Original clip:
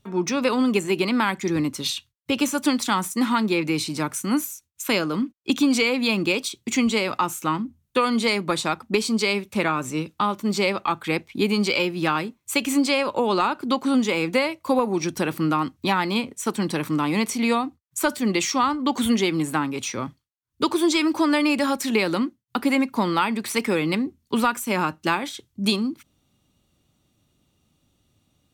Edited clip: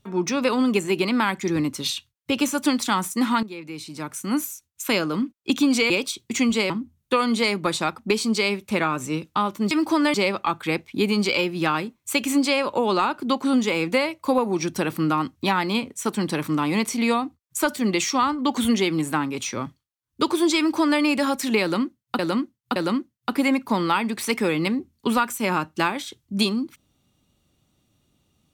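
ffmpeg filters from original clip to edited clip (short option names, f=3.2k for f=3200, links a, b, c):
-filter_complex "[0:a]asplit=8[a][b][c][d][e][f][g][h];[a]atrim=end=3.43,asetpts=PTS-STARTPTS,afade=t=out:st=3.426:d=0.004:c=hsin:silence=0.188365[i];[b]atrim=start=3.43:end=5.902,asetpts=PTS-STARTPTS,afade=t=in:d=1.01:c=qua:silence=0.188365[j];[c]atrim=start=6.268:end=7.072[k];[d]atrim=start=7.538:end=10.552[l];[e]atrim=start=20.988:end=21.422[m];[f]atrim=start=10.548:end=22.602[n];[g]atrim=start=22.028:end=22.602[o];[h]atrim=start=22.028[p];[i][j]concat=n=2:v=0:a=1[q];[q][k]acrossfade=d=0.004:c1=hsin:c2=hsin[r];[r][l]acrossfade=d=0.004:c1=hsin:c2=hsin[s];[s][m]acrossfade=d=0.004:c1=hsin:c2=hsin[t];[t][n]acrossfade=d=0.004:c1=hsin:c2=hsin[u];[u][o]acrossfade=d=0.004:c1=hsin:c2=hsin[v];[v][p]acrossfade=d=0.004:c1=hsin:c2=hsin"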